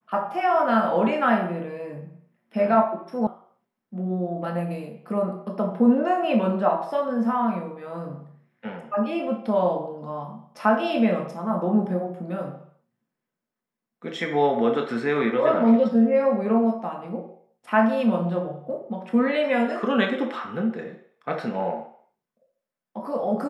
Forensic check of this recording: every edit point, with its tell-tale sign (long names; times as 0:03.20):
0:03.27: cut off before it has died away